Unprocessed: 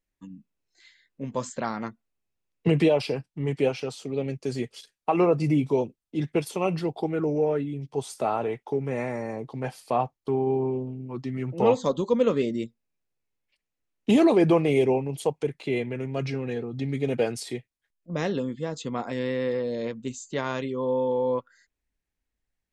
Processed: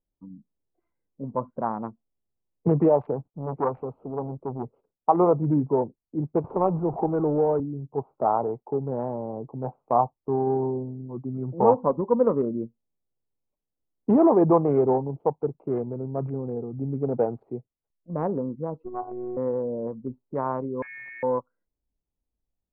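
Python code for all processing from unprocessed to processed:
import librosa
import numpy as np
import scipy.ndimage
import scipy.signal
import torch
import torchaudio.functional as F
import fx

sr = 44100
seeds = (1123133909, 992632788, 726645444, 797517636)

y = fx.chain(x, sr, fx.law_mismatch(coded='mu'),
    fx.high_shelf(hz=8000.0, db=4.5),
    fx.transformer_sat(knee_hz=1200.0), at=(3.25, 4.71))
y = fx.chain(y, sr, fx.zero_step(step_db=-33.0),
    fx.band_squash(depth_pct=40), at=(6.44, 7.6))
y = fx.chain(y, sr, fx.robotise(hz=366.0),
    fx.hum_notches(base_hz=60, count=3), at=(18.84, 19.37))
y = fx.chain(y, sr, fx.peak_eq(hz=870.0, db=7.0, octaves=1.3),
    fx.freq_invert(carrier_hz=2700), at=(20.82, 21.23))
y = fx.wiener(y, sr, points=25)
y = scipy.signal.sosfilt(scipy.signal.butter(4, 1200.0, 'lowpass', fs=sr, output='sos'), y)
y = fx.dynamic_eq(y, sr, hz=930.0, q=1.5, threshold_db=-42.0, ratio=4.0, max_db=8)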